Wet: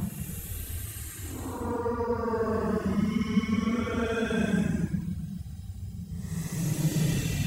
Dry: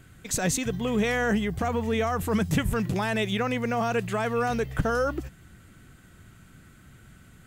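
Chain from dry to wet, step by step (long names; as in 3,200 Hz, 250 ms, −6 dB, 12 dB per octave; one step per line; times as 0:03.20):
extreme stretch with random phases 21×, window 0.05 s, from 0:02.20
reverb reduction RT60 0.54 s
level −2.5 dB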